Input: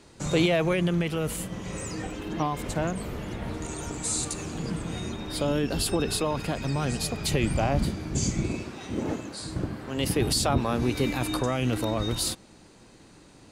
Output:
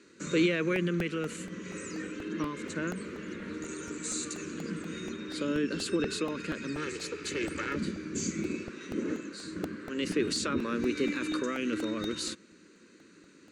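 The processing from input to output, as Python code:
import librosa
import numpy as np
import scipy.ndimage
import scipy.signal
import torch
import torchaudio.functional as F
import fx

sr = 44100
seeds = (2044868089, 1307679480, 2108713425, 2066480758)

y = fx.lower_of_two(x, sr, delay_ms=2.3, at=(6.75, 7.75), fade=0.02)
y = fx.cabinet(y, sr, low_hz=110.0, low_slope=24, high_hz=6900.0, hz=(250.0, 840.0, 1500.0, 3300.0, 5100.0), db=(-3, -9, 5, -8, -9))
y = fx.fixed_phaser(y, sr, hz=300.0, stages=4)
y = fx.buffer_crackle(y, sr, first_s=0.76, period_s=0.24, block=64, kind='repeat')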